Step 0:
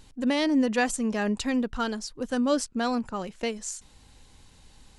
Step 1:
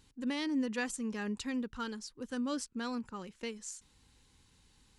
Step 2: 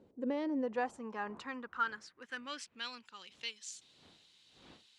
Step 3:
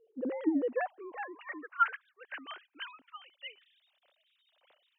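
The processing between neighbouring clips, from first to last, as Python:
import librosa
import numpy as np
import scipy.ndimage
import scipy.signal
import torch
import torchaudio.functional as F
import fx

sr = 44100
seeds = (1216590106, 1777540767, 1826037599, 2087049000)

y1 = fx.highpass(x, sr, hz=49.0, slope=6)
y1 = fx.peak_eq(y1, sr, hz=660.0, db=-15.0, octaves=0.35)
y1 = y1 * librosa.db_to_amplitude(-9.0)
y2 = fx.dmg_wind(y1, sr, seeds[0], corner_hz=190.0, level_db=-48.0)
y2 = fx.filter_sweep_bandpass(y2, sr, from_hz=460.0, to_hz=3500.0, start_s=0.15, end_s=3.15, q=2.3)
y2 = y2 * librosa.db_to_amplitude(9.0)
y3 = fx.sine_speech(y2, sr)
y3 = y3 * librosa.db_to_amplitude(3.5)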